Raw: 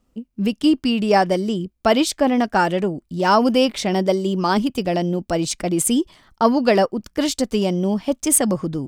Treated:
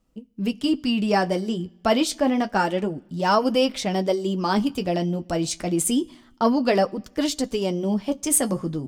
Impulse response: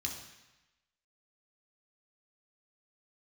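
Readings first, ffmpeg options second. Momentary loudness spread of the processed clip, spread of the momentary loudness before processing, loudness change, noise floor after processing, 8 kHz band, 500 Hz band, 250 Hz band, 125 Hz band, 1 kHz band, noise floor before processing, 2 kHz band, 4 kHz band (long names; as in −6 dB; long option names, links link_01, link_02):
6 LU, 6 LU, −4.0 dB, −55 dBFS, −3.5 dB, −4.0 dB, −4.0 dB, −3.5 dB, −4.5 dB, −67 dBFS, −4.0 dB, −3.0 dB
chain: -filter_complex "[0:a]flanger=delay=6.2:depth=6.5:regen=-44:speed=0.28:shape=sinusoidal,asplit=2[link_01][link_02];[1:a]atrim=start_sample=2205[link_03];[link_02][link_03]afir=irnorm=-1:irlink=0,volume=-21dB[link_04];[link_01][link_04]amix=inputs=2:normalize=0"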